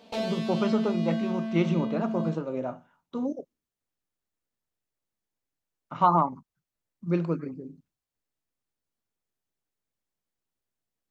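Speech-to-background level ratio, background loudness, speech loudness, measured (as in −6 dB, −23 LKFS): 2.5 dB, −31.5 LKFS, −29.0 LKFS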